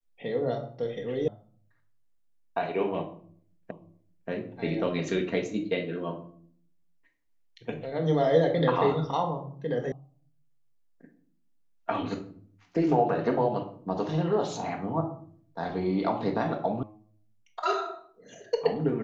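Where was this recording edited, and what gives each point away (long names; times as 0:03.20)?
0:01.28: cut off before it has died away
0:03.71: the same again, the last 0.58 s
0:09.92: cut off before it has died away
0:16.83: cut off before it has died away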